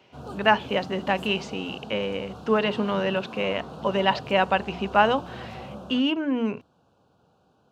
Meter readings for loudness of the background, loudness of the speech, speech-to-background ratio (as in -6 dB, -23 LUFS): -40.0 LUFS, -25.0 LUFS, 15.0 dB